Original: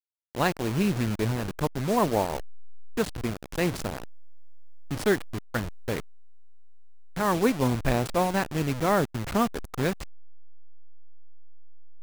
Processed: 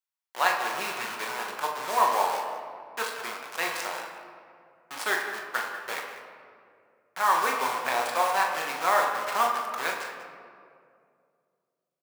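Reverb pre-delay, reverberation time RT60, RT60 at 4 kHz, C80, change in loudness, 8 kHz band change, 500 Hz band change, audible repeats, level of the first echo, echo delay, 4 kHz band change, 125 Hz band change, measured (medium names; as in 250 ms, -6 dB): 5 ms, 2.3 s, 1.1 s, 5.5 dB, 0.0 dB, +2.0 dB, -5.0 dB, 2, -8.0 dB, 42 ms, +3.0 dB, under -25 dB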